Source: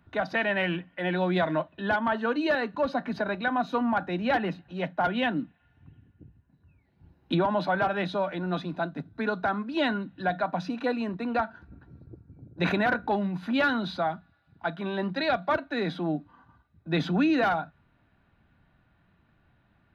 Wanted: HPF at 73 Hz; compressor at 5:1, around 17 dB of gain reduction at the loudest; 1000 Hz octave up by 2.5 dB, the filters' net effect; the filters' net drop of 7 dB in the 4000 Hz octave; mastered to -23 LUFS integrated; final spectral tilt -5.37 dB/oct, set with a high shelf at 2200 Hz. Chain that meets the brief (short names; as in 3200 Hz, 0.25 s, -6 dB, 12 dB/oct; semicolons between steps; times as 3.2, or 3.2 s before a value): HPF 73 Hz; bell 1000 Hz +4.5 dB; high shelf 2200 Hz -3.5 dB; bell 4000 Hz -6 dB; compressor 5:1, threshold -40 dBFS; gain +19.5 dB